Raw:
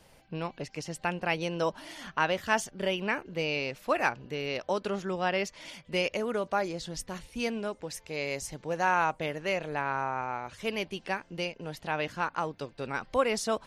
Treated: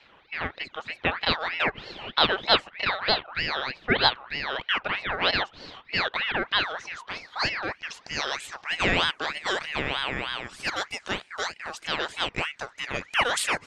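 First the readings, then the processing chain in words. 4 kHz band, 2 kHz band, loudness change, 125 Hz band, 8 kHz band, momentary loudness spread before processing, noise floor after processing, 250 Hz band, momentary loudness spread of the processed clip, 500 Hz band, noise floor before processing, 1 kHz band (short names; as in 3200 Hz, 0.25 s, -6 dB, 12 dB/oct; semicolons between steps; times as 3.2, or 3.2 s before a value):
+12.5 dB, +6.5 dB, +5.0 dB, 0.0 dB, +2.0 dB, 9 LU, -57 dBFS, -1.0 dB, 11 LU, -1.5 dB, -59 dBFS, +2.0 dB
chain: low-pass sweep 1800 Hz -> 6900 Hz, 6.16–9.78; ring modulator with a swept carrier 1700 Hz, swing 45%, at 3.2 Hz; gain +5 dB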